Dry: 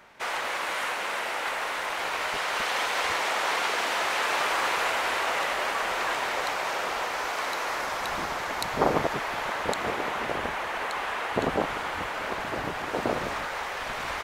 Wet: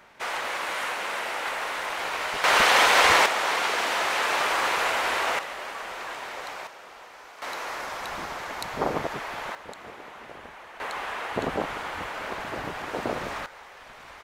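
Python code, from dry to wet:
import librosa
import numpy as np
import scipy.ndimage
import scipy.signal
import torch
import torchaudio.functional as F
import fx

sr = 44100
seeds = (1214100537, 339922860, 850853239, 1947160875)

y = fx.gain(x, sr, db=fx.steps((0.0, 0.0), (2.44, 9.5), (3.26, 1.5), (5.39, -7.5), (6.67, -16.0), (7.42, -3.5), (9.55, -13.5), (10.8, -2.0), (13.46, -13.5)))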